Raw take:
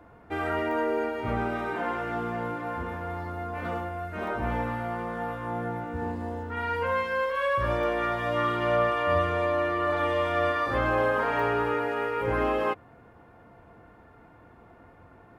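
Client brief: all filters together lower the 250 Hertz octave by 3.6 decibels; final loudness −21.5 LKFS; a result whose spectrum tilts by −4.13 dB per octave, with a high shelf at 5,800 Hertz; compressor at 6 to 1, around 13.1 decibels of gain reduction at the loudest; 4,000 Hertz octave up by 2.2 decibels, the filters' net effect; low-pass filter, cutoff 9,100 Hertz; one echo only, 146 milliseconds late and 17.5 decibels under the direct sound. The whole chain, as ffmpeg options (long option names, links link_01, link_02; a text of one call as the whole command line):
ffmpeg -i in.wav -af "lowpass=9100,equalizer=frequency=250:width_type=o:gain=-5,equalizer=frequency=4000:width_type=o:gain=5,highshelf=frequency=5800:gain=-5,acompressor=threshold=-36dB:ratio=6,aecho=1:1:146:0.133,volume=17dB" out.wav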